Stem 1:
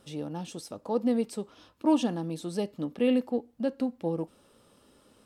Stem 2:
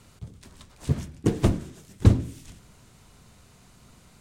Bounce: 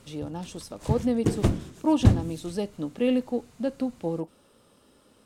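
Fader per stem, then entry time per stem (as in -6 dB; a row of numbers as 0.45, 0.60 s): +1.0, -1.5 dB; 0.00, 0.00 s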